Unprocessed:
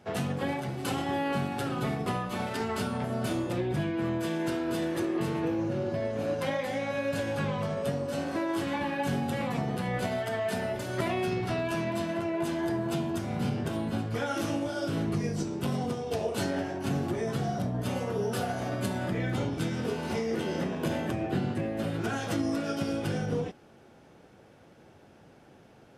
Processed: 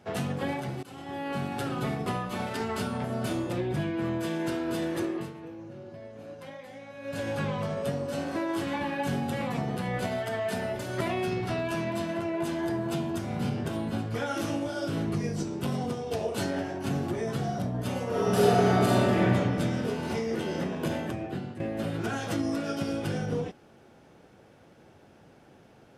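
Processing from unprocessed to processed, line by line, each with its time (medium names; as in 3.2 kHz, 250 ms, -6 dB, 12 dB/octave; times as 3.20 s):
0.83–1.55 s: fade in, from -22.5 dB
5.05–7.27 s: dip -13 dB, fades 0.28 s
18.07–19.20 s: reverb throw, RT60 2.5 s, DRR -7.5 dB
20.91–21.60 s: fade out, to -10.5 dB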